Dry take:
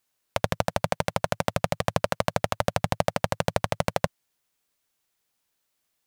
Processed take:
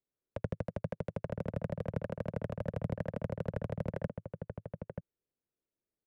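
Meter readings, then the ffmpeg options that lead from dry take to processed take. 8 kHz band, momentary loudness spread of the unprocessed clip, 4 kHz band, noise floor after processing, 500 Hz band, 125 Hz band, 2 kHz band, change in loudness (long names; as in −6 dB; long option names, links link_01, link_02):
below −30 dB, 3 LU, below −25 dB, below −85 dBFS, −11.0 dB, −6.0 dB, −18.0 dB, −11.5 dB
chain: -filter_complex "[0:a]firequalizer=gain_entry='entry(390,0);entry(780,-21);entry(3400,-25)':delay=0.05:min_phase=1,acrossover=split=250|440|3000[link_01][link_02][link_03][link_04];[link_03]aeval=exprs='0.0631*sin(PI/2*1.78*val(0)/0.0631)':channel_layout=same[link_05];[link_01][link_02][link_05][link_04]amix=inputs=4:normalize=0,asplit=2[link_06][link_07];[link_07]adelay=932.9,volume=-6dB,highshelf=frequency=4000:gain=-21[link_08];[link_06][link_08]amix=inputs=2:normalize=0,volume=-7dB"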